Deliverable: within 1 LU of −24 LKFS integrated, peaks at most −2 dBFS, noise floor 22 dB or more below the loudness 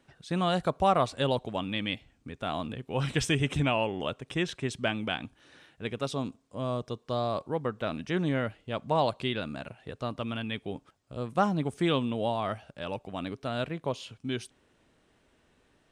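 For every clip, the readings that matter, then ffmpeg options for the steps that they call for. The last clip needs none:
integrated loudness −31.5 LKFS; sample peak −11.5 dBFS; target loudness −24.0 LKFS
→ -af "volume=7.5dB"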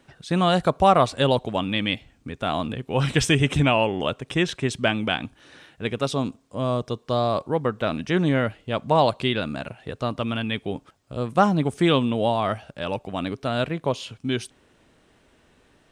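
integrated loudness −24.0 LKFS; sample peak −4.0 dBFS; background noise floor −60 dBFS

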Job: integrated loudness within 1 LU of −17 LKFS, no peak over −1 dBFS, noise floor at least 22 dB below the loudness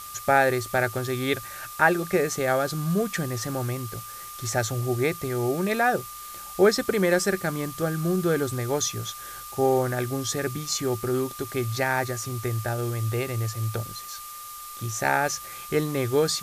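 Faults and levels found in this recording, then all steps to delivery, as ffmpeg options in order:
interfering tone 1,200 Hz; level of the tone −40 dBFS; background noise floor −40 dBFS; target noise floor −48 dBFS; integrated loudness −26.0 LKFS; sample peak −6.5 dBFS; target loudness −17.0 LKFS
→ -af "bandreject=frequency=1200:width=30"
-af "afftdn=noise_reduction=8:noise_floor=-40"
-af "volume=9dB,alimiter=limit=-1dB:level=0:latency=1"

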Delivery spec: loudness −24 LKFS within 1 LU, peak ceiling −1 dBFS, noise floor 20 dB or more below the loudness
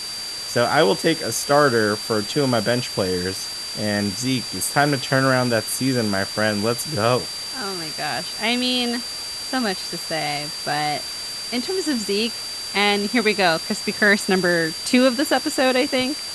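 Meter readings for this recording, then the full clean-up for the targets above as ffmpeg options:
interfering tone 4,700 Hz; level of the tone −29 dBFS; background noise floor −31 dBFS; target noise floor −41 dBFS; integrated loudness −21.0 LKFS; sample peak −2.0 dBFS; target loudness −24.0 LKFS
→ -af "bandreject=frequency=4700:width=30"
-af "afftdn=noise_reduction=10:noise_floor=-31"
-af "volume=-3dB"

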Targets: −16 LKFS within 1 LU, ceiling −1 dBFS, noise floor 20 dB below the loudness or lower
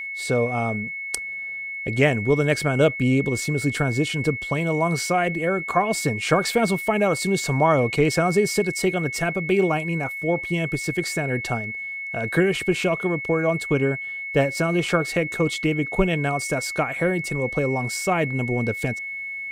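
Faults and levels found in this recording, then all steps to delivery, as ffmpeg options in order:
interfering tone 2,200 Hz; level of the tone −29 dBFS; integrated loudness −23.0 LKFS; sample peak −4.5 dBFS; target loudness −16.0 LKFS
→ -af "bandreject=frequency=2200:width=30"
-af "volume=7dB,alimiter=limit=-1dB:level=0:latency=1"

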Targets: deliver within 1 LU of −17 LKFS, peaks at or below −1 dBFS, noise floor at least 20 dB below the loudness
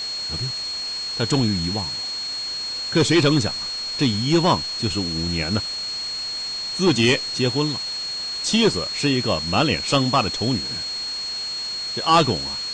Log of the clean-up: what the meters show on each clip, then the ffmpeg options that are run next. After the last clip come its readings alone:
interfering tone 4,300 Hz; level of the tone −26 dBFS; background noise floor −29 dBFS; target noise floor −42 dBFS; integrated loudness −21.5 LKFS; sample peak −6.5 dBFS; target loudness −17.0 LKFS
→ -af "bandreject=frequency=4300:width=30"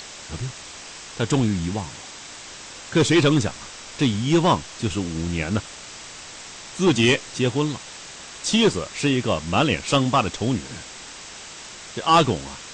interfering tone none found; background noise floor −40 dBFS; target noise floor −42 dBFS
→ -af "afftdn=noise_reduction=6:noise_floor=-40"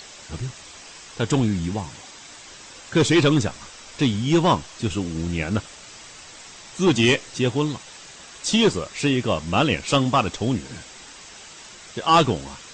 background noise floor −43 dBFS; integrated loudness −22.0 LKFS; sample peak −7.0 dBFS; target loudness −17.0 LKFS
→ -af "volume=5dB"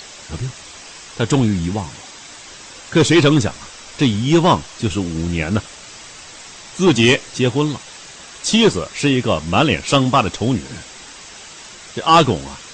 integrated loudness −17.0 LKFS; sample peak −2.0 dBFS; background noise floor −38 dBFS

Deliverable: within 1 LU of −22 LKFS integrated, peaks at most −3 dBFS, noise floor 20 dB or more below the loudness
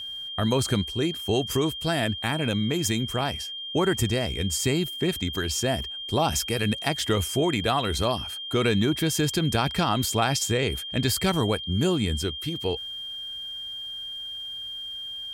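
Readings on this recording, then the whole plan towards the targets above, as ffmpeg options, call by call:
interfering tone 3,200 Hz; level of the tone −33 dBFS; integrated loudness −26.0 LKFS; sample peak −9.0 dBFS; target loudness −22.0 LKFS
→ -af "bandreject=frequency=3200:width=30"
-af "volume=4dB"

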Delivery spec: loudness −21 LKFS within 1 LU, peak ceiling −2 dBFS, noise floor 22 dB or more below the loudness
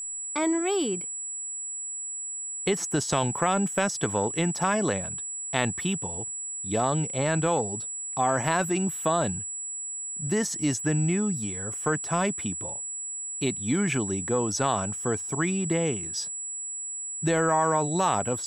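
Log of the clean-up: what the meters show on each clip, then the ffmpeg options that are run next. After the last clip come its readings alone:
interfering tone 7,800 Hz; level of the tone −32 dBFS; integrated loudness −27.0 LKFS; sample peak −6.5 dBFS; target loudness −21.0 LKFS
→ -af "bandreject=frequency=7800:width=30"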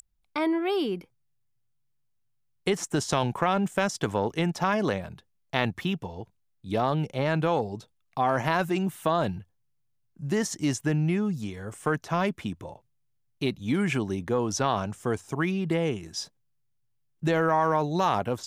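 interfering tone none found; integrated loudness −28.0 LKFS; sample peak −6.5 dBFS; target loudness −21.0 LKFS
→ -af "volume=7dB,alimiter=limit=-2dB:level=0:latency=1"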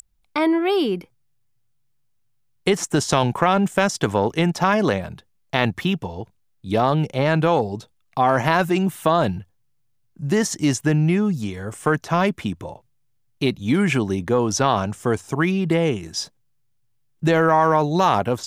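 integrated loudness −21.0 LKFS; sample peak −2.0 dBFS; background noise floor −65 dBFS

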